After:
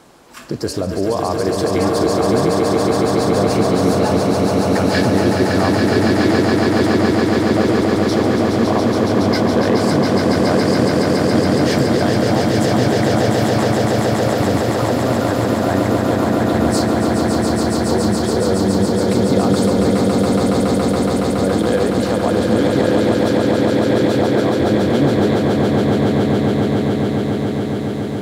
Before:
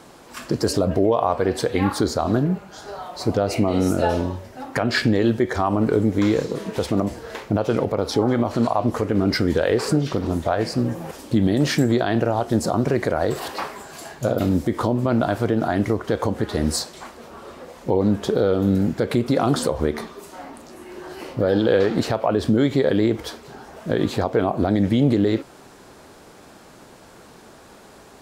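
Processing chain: echo with a slow build-up 140 ms, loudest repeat 8, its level -4.5 dB; trim -1 dB

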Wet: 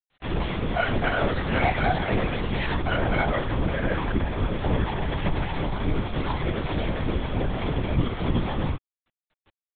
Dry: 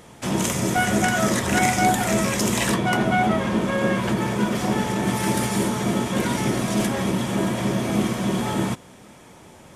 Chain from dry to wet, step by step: bit crusher 6-bit; chorus voices 6, 0.44 Hz, delay 23 ms, depth 3.4 ms; LPC vocoder at 8 kHz whisper

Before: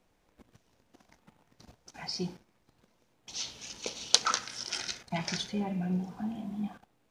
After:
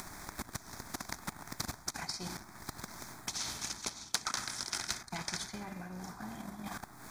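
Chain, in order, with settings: reverse; compression 8:1, threshold -48 dBFS, peak gain reduction 31 dB; reverse; static phaser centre 1.2 kHz, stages 4; upward compressor, threshold -58 dBFS; transient shaper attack +9 dB, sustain -3 dB; spectrum-flattening compressor 2:1; trim +12.5 dB

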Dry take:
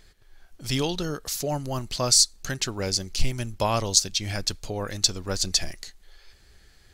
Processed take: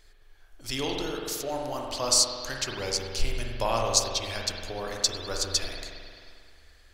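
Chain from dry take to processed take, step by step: peaking EQ 160 Hz -14 dB 1 oct; spring tank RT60 2.1 s, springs 44 ms, chirp 60 ms, DRR -0.5 dB; trim -3.5 dB

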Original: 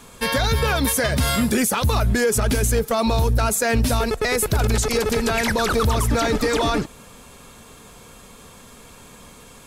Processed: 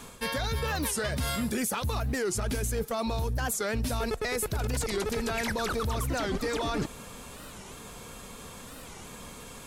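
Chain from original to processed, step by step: reverse; compression 6:1, threshold -28 dBFS, peak gain reduction 12 dB; reverse; warped record 45 rpm, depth 250 cents

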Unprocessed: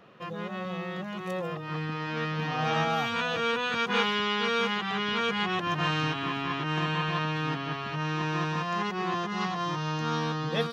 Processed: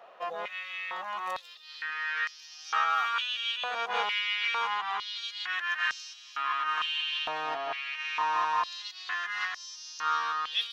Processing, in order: gain riding within 3 dB 2 s; step-sequenced high-pass 2.2 Hz 690–5500 Hz; trim -4 dB

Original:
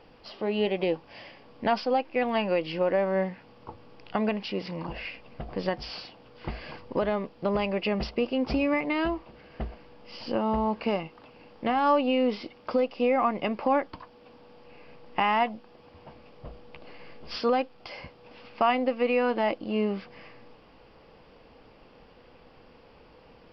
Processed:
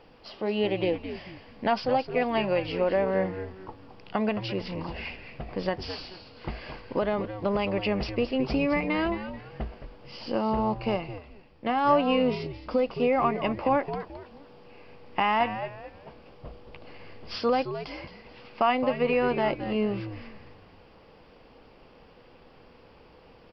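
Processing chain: frequency-shifting echo 217 ms, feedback 33%, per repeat -97 Hz, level -10 dB; 10.74–12.72 s: three bands expanded up and down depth 40%

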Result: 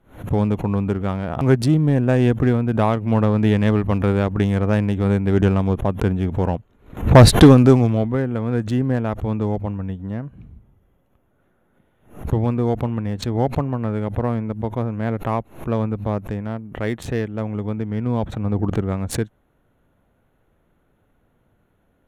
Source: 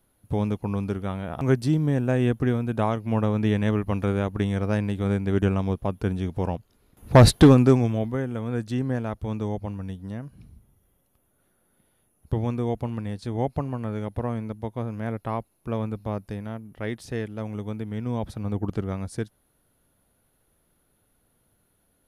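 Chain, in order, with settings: local Wiener filter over 9 samples; in parallel at -9 dB: hard clipper -22 dBFS, distortion -5 dB; on the sum: swell ahead of each attack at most 140 dB/s; trim +4 dB

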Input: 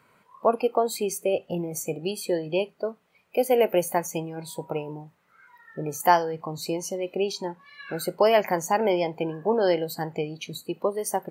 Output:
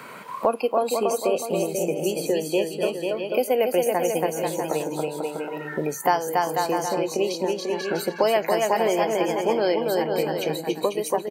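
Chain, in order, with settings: high-pass 180 Hz 12 dB/octave; bouncing-ball echo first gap 280 ms, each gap 0.75×, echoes 5; three bands compressed up and down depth 70%

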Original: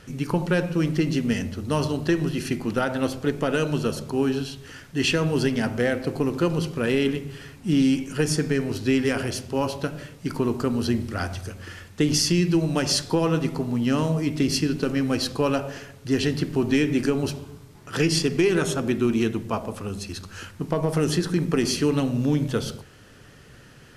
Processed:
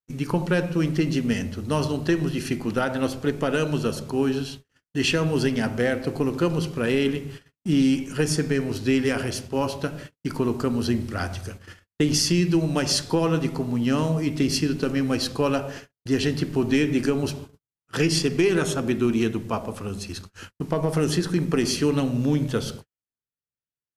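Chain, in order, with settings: gate -37 dBFS, range -55 dB

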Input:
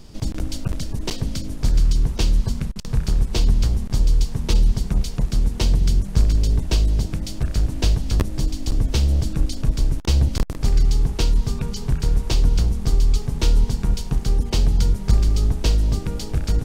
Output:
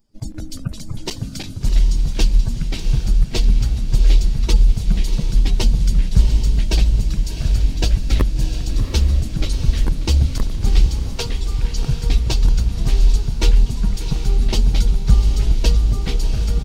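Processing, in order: expander on every frequency bin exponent 2; 10.86–11.73 s: steep high-pass 400 Hz 96 dB/octave; echo that smears into a reverb 725 ms, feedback 52%, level -8 dB; ever faster or slower copies 118 ms, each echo -3 st, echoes 3, each echo -6 dB; delay 588 ms -16.5 dB; trim +5.5 dB

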